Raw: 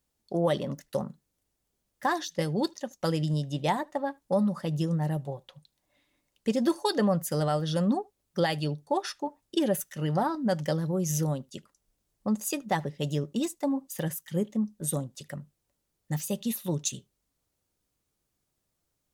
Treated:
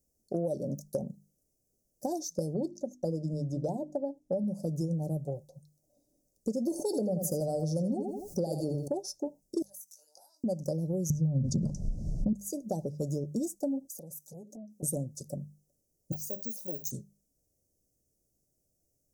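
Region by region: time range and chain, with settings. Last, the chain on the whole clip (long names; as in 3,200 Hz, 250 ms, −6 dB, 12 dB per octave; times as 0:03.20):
0:02.54–0:04.44: low-pass filter 2,500 Hz 6 dB per octave + mains-hum notches 50/100/150/200/250/300/350 Hz
0:06.71–0:08.88: notch filter 1,000 Hz, Q 13 + repeating echo 84 ms, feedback 25%, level −10 dB + envelope flattener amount 50%
0:09.62–0:10.44: high-pass filter 1,400 Hz 24 dB per octave + downward compressor 12 to 1, threshold −46 dBFS + double-tracking delay 20 ms −4 dB
0:11.10–0:12.33: low-pass filter 3,100 Hz + low shelf with overshoot 250 Hz +12 dB, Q 1.5 + envelope flattener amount 100%
0:13.85–0:14.83: high-pass filter 160 Hz + downward compressor 20 to 1, threshold −41 dBFS + saturating transformer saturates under 1,100 Hz
0:16.12–0:16.91: resonant band-pass 1,700 Hz, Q 1.1 + bad sample-rate conversion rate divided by 2×, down filtered, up zero stuff + envelope flattener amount 50%
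whole clip: elliptic band-stop filter 630–5,700 Hz, stop band 40 dB; mains-hum notches 50/100/150/200 Hz; downward compressor 4 to 1, threshold −33 dBFS; level +3.5 dB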